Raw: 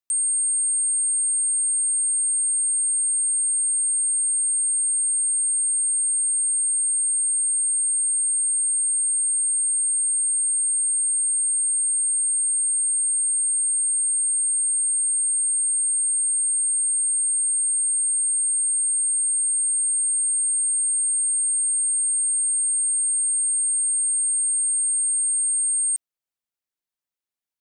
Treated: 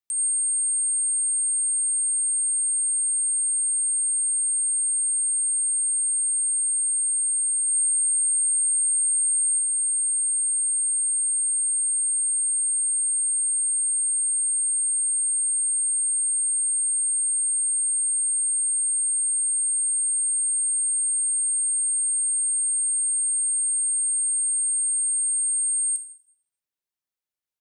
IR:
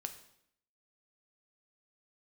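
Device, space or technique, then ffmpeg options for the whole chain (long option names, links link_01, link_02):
bathroom: -filter_complex "[0:a]asplit=3[link_01][link_02][link_03];[link_01]afade=type=out:start_time=7.67:duration=0.02[link_04];[link_02]aecho=1:1:3.3:0.65,afade=type=in:start_time=7.67:duration=0.02,afade=type=out:start_time=9.58:duration=0.02[link_05];[link_03]afade=type=in:start_time=9.58:duration=0.02[link_06];[link_04][link_05][link_06]amix=inputs=3:normalize=0[link_07];[1:a]atrim=start_sample=2205[link_08];[link_07][link_08]afir=irnorm=-1:irlink=0"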